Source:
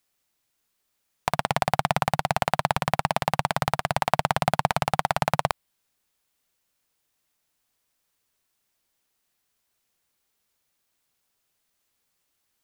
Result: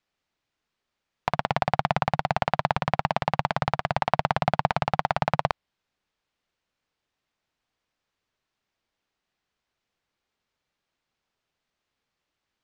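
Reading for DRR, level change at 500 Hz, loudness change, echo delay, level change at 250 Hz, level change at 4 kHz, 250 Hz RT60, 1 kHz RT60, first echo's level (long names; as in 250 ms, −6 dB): no reverb audible, −0.5 dB, −1.0 dB, no echo audible, 0.0 dB, −4.0 dB, no reverb audible, no reverb audible, no echo audible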